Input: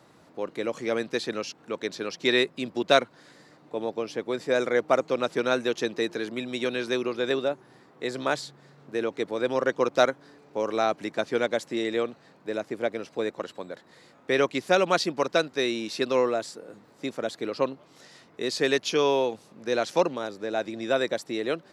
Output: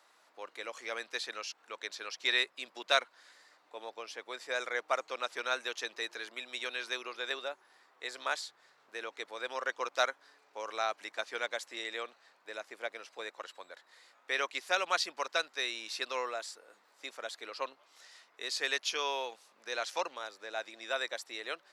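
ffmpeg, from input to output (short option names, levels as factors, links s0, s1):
-af "highpass=970,volume=0.668"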